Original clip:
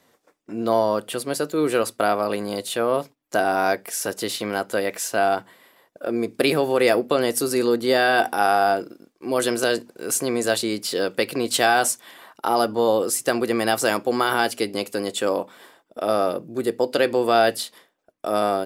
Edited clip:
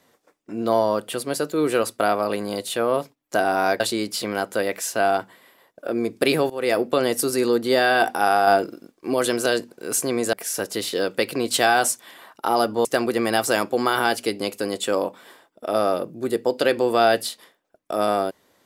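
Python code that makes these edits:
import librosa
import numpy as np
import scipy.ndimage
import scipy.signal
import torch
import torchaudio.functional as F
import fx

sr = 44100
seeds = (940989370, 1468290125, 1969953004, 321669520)

y = fx.edit(x, sr, fx.swap(start_s=3.8, length_s=0.6, other_s=10.51, other_length_s=0.42),
    fx.fade_in_from(start_s=6.68, length_s=0.45, curve='qsin', floor_db=-20.0),
    fx.clip_gain(start_s=8.65, length_s=0.67, db=3.5),
    fx.cut(start_s=12.85, length_s=0.34), tone=tone)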